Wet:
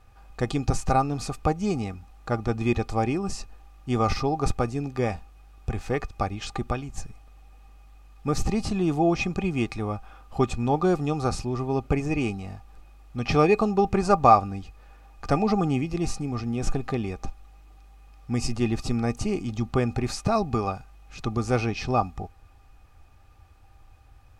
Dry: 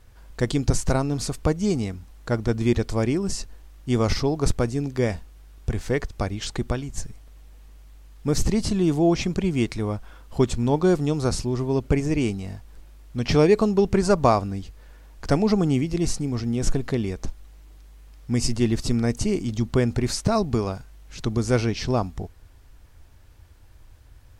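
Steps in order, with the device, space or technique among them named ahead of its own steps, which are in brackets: inside a helmet (treble shelf 5.9 kHz -5 dB; small resonant body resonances 790/1200/2500 Hz, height 17 dB, ringing for 75 ms); trim -3.5 dB

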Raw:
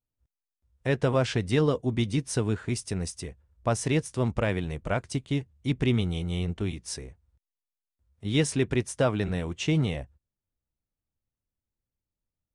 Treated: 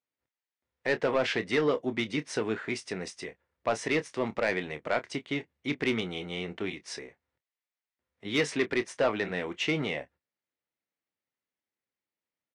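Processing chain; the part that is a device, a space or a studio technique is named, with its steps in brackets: intercom (band-pass 320–4400 Hz; peaking EQ 2 kHz +7 dB 0.52 oct; saturation -20 dBFS, distortion -14 dB; doubling 27 ms -12 dB); trim +2 dB

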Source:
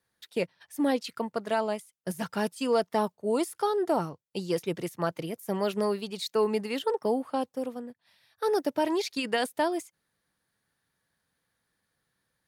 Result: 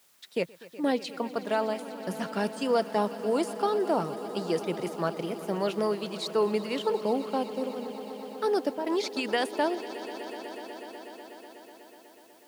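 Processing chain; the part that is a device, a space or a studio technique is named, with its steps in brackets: worn cassette (low-pass 8.8 kHz 12 dB/octave; wow and flutter; level dips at 0.67/8.70/9.75 s, 164 ms -7 dB; white noise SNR 32 dB); high-pass 140 Hz 12 dB/octave; echo with a slow build-up 123 ms, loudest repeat 5, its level -18 dB

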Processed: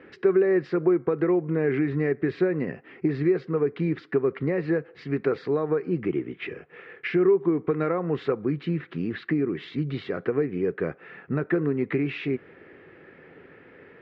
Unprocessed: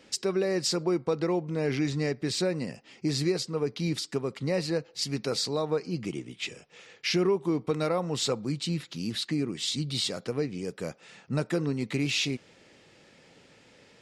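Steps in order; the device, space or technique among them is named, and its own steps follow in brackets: bass amplifier (compression, threshold -29 dBFS, peak gain reduction 8 dB; cabinet simulation 69–2000 Hz, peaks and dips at 120 Hz -7 dB, 210 Hz -7 dB, 390 Hz +6 dB, 590 Hz -6 dB, 880 Hz -7 dB, 1.7 kHz +4 dB); trim +9 dB

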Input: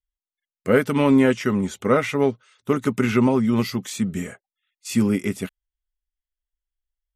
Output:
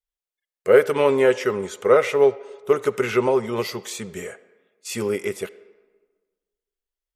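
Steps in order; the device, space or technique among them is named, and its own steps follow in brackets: filtered reverb send (on a send: high-pass 310 Hz 12 dB/octave + low-pass 6.5 kHz 12 dB/octave + reverberation RT60 1.4 s, pre-delay 43 ms, DRR 17 dB); on the sum: resonant low shelf 330 Hz -8 dB, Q 3

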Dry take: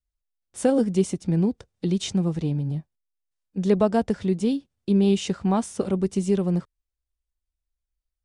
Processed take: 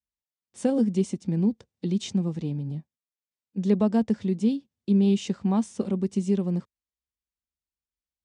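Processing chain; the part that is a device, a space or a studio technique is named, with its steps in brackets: car door speaker (cabinet simulation 90–8700 Hz, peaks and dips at 220 Hz +8 dB, 670 Hz -3 dB, 1.4 kHz -5 dB); trim -5 dB

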